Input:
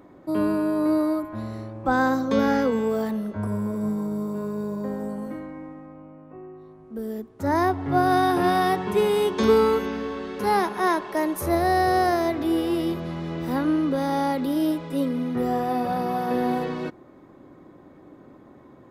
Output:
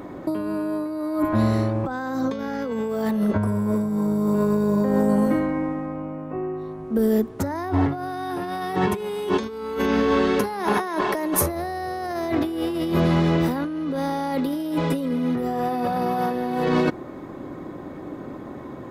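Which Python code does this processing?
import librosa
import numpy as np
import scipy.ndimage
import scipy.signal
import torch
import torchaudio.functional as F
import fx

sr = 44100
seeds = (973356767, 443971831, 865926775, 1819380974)

y = fx.over_compress(x, sr, threshold_db=-31.0, ratio=-1.0)
y = y * 10.0 ** (7.0 / 20.0)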